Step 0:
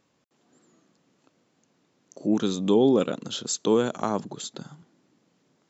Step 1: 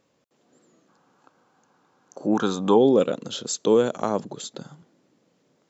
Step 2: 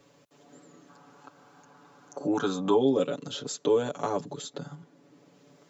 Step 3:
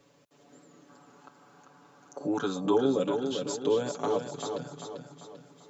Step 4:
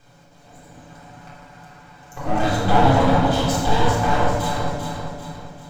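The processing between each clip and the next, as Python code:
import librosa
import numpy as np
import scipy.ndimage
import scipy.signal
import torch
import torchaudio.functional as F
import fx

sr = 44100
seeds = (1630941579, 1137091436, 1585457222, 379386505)

y1 = fx.spec_box(x, sr, start_s=0.89, length_s=1.89, low_hz=720.0, high_hz=1700.0, gain_db=11)
y1 = fx.peak_eq(y1, sr, hz=520.0, db=6.0, octaves=0.62)
y2 = y1 + 0.99 * np.pad(y1, (int(7.0 * sr / 1000.0), 0))[:len(y1)]
y2 = fx.band_squash(y2, sr, depth_pct=40)
y2 = y2 * 10.0 ** (-7.0 / 20.0)
y3 = fx.echo_feedback(y2, sr, ms=393, feedback_pct=45, wet_db=-6.0)
y3 = y3 * 10.0 ** (-2.5 / 20.0)
y4 = fx.lower_of_two(y3, sr, delay_ms=1.3)
y4 = fx.room_shoebox(y4, sr, seeds[0], volume_m3=1100.0, walls='mixed', distance_m=3.7)
y4 = y4 * 10.0 ** (5.5 / 20.0)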